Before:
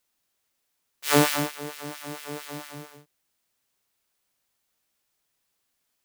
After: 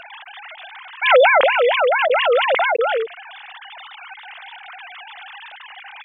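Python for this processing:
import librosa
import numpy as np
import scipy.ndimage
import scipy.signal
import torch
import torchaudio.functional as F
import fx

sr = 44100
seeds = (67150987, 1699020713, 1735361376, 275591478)

y = fx.sine_speech(x, sr)
y = fx.env_flatten(y, sr, amount_pct=70)
y = F.gain(torch.from_numpy(y), 6.0).numpy()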